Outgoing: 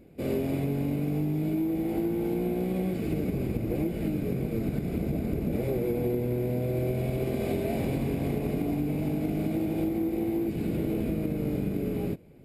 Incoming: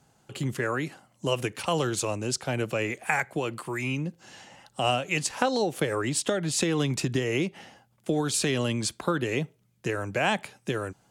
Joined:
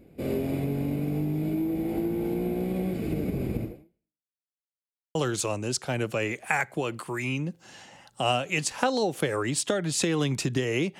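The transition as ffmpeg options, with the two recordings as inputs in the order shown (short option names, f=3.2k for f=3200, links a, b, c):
-filter_complex "[0:a]apad=whole_dur=10.99,atrim=end=10.99,asplit=2[a][b];[a]atrim=end=4.34,asetpts=PTS-STARTPTS,afade=t=out:st=3.63:d=0.71:c=exp[c];[b]atrim=start=4.34:end=5.15,asetpts=PTS-STARTPTS,volume=0[d];[1:a]atrim=start=1.74:end=7.58,asetpts=PTS-STARTPTS,afade=t=in:d=0.004:c=hsin[e];[c][d][e]concat=n=3:v=0:a=1"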